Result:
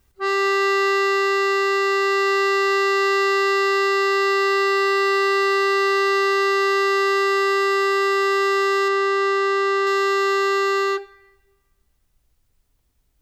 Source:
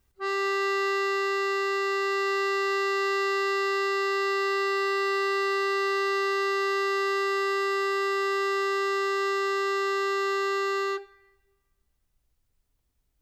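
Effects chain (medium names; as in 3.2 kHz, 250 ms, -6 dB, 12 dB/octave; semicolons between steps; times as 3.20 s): 8.88–9.87 s: treble shelf 5.3 kHz -9 dB; trim +7.5 dB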